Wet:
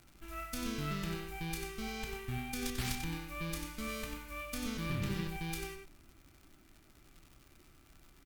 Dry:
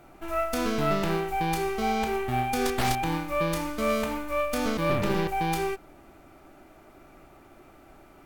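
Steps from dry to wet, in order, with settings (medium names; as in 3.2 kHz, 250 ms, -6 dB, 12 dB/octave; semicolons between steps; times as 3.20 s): amplifier tone stack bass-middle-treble 6-0-2; crackle 120 per s -55 dBFS; echo from a far wall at 16 m, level -6 dB; trim +8 dB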